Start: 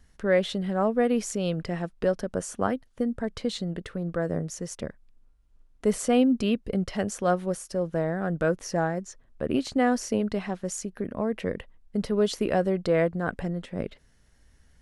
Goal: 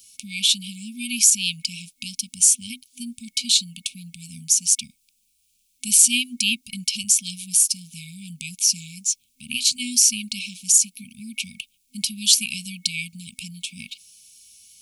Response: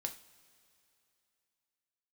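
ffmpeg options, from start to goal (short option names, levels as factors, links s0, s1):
-af "afftfilt=real='re*(1-between(b*sr/4096,250,2200))':imag='im*(1-between(b*sr/4096,250,2200))':win_size=4096:overlap=0.75,aderivative,alimiter=level_in=16.8:limit=0.891:release=50:level=0:latency=1,volume=0.891"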